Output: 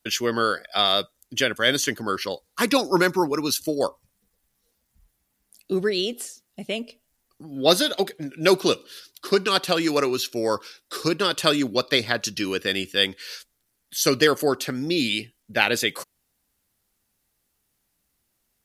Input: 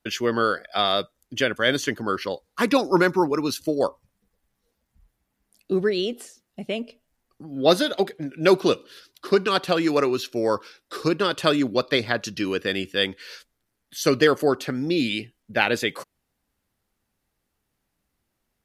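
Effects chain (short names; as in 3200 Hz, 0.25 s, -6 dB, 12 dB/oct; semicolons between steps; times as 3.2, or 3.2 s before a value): high shelf 3700 Hz +11.5 dB; gain -1.5 dB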